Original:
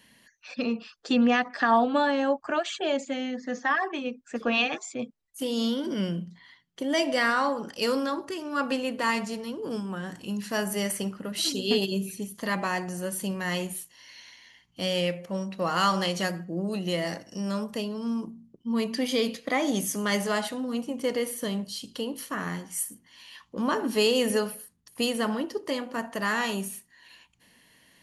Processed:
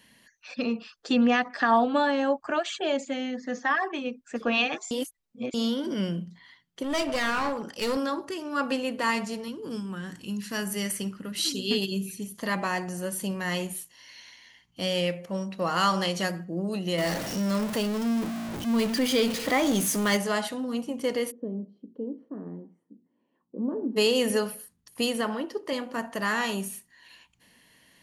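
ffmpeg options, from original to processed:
ffmpeg -i in.wav -filter_complex "[0:a]asettb=1/sr,asplit=3[link_01][link_02][link_03];[link_01]atrim=end=6.834[link_04];[link_02]atrim=start=6.83:end=7.97,asetpts=PTS-STARTPTS,afade=type=in:duration=0.004:curve=qsin,afade=type=out:start_time=1.136:duration=0.004:curve=qsin,aeval=exprs='clip(val(0),-1,0.0335)':channel_layout=same[link_05];[link_03]atrim=start=7.966[link_06];[link_04][link_05]acrossfade=duration=0.004:curve1=hsin:curve2=qsin[link_07];[link_07][link_06]acrossfade=duration=0.004:curve1=qsin:curve2=hsin,asettb=1/sr,asplit=3[link_08][link_09][link_10];[link_08]atrim=end=9.484[link_11];[link_09]atrim=start=9.48:end=12.26,asetpts=PTS-STARTPTS,afade=type=in:duration=0.004:curve=qsin,afade=type=out:start_time=2.776:duration=0.004:curve=qsin,equalizer=frequency=680:width_type=o:width=1.2:gain=-9[link_12];[link_10]atrim=start=12.256[link_13];[link_11][link_12]acrossfade=duration=0.004:curve1=hsin:curve2=qsin[link_14];[link_14][link_13]acrossfade=duration=0.004:curve1=qsin:curve2=hsin,asettb=1/sr,asplit=3[link_15][link_16][link_17];[link_15]atrim=end=16.984[link_18];[link_16]atrim=start=16.98:end=20.17,asetpts=PTS-STARTPTS,afade=type=in:duration=0.004:curve=qsin,afade=type=out:start_time=3.186:duration=0.004:curve=qsin,aeval=exprs='val(0)+0.5*0.0376*sgn(val(0))':channel_layout=same[link_19];[link_17]atrim=start=20.166[link_20];[link_18][link_19]acrossfade=duration=0.004:curve1=hsin:curve2=qsin[link_21];[link_21][link_20]acrossfade=duration=0.004:curve1=qsin:curve2=hsin,asplit=3[link_22][link_23][link_24];[link_22]afade=type=out:start_time=21.3:duration=0.02[link_25];[link_23]asuperpass=centerf=310:order=4:qfactor=1.1,afade=type=in:start_time=21.3:duration=0.02,afade=type=out:start_time=23.96:duration=0.02[link_26];[link_24]afade=type=in:start_time=23.96:duration=0.02[link_27];[link_25][link_26][link_27]amix=inputs=3:normalize=0,asettb=1/sr,asplit=3[link_28][link_29][link_30];[link_28]atrim=end=25.214[link_31];[link_29]atrim=start=25.21:end=25.73,asetpts=PTS-STARTPTS,afade=type=in:duration=0.004:curve=qsin,afade=type=out:start_time=0.516:duration=0.004:curve=qsin,bass=frequency=250:gain=-6,treble=frequency=4000:gain=-5[link_32];[link_30]atrim=start=25.726[link_33];[link_31][link_32]acrossfade=duration=0.004:curve1=hsin:curve2=qsin[link_34];[link_34][link_33]acrossfade=duration=0.004:curve1=qsin:curve2=hsin,asplit=3[link_35][link_36][link_37];[link_35]atrim=end=4.912[link_38];[link_36]atrim=start=4.908:end=5.542,asetpts=PTS-STARTPTS,areverse[link_39];[link_37]atrim=start=5.538[link_40];[link_38][link_39]acrossfade=duration=0.004:curve1=hsin:curve2=hsin[link_41];[link_41][link_40]acrossfade=duration=0.004:curve1=hsin:curve2=hsin" out.wav

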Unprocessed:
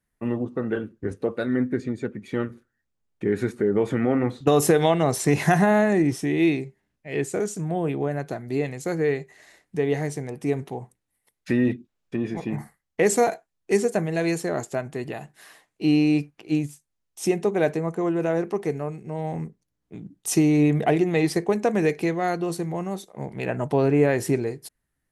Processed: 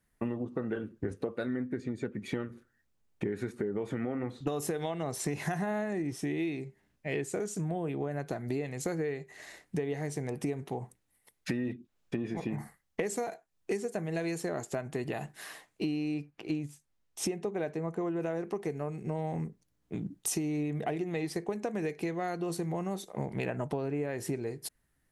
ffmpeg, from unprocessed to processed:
ffmpeg -i in.wav -filter_complex "[0:a]asettb=1/sr,asplit=3[link_01][link_02][link_03];[link_01]atrim=end=16.144[link_04];[link_02]atrim=start=16.14:end=18.21,asetpts=PTS-STARTPTS,afade=type=in:duration=0.004:curve=qsin,afade=type=out:start_time=2.066:duration=0.004:curve=qsin,highshelf=frequency=5700:gain=-7[link_05];[link_03]atrim=start=18.206[link_06];[link_04][link_05]acrossfade=duration=0.004:curve1=hsin:curve2=qsin[link_07];[link_07][link_06]acrossfade=duration=0.004:curve1=qsin:curve2=hsin,acompressor=threshold=-34dB:ratio=10,volume=3.5dB" out.wav

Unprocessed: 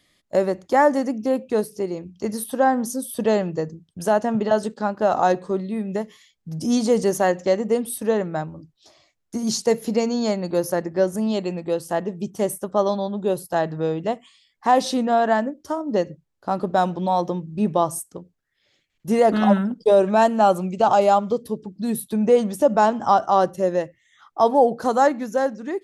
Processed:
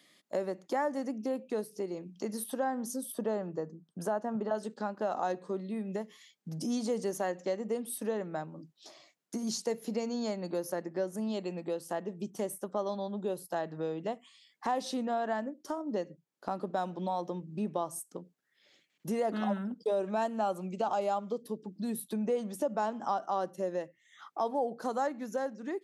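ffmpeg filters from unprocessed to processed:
ffmpeg -i in.wav -filter_complex "[0:a]asettb=1/sr,asplit=3[link_01][link_02][link_03];[link_01]atrim=end=3.124[link_04];[link_02]atrim=start=3.12:end=4.55,asetpts=PTS-STARTPTS,afade=type=in:duration=0.004:curve=qsin,afade=type=out:start_time=1.426:duration=0.004:curve=qsin,highshelf=frequency=1800:width_type=q:width=1.5:gain=-6.5[link_05];[link_03]atrim=start=4.546[link_06];[link_04][link_05]acrossfade=duration=0.004:curve1=hsin:curve2=qsin[link_07];[link_07][link_06]acrossfade=duration=0.004:curve1=qsin:curve2=hsin,highpass=frequency=170:width=0.5412,highpass=frequency=170:width=1.3066,acompressor=threshold=-41dB:ratio=2" out.wav

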